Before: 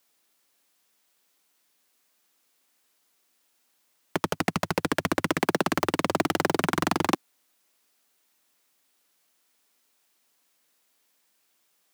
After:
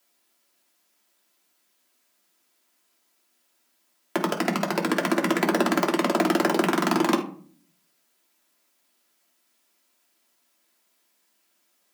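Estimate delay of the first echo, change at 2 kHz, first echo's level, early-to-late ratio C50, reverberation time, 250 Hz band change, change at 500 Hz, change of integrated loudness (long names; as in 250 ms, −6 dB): no echo audible, +1.5 dB, no echo audible, 10.5 dB, 0.50 s, +5.0 dB, +3.5 dB, +3.0 dB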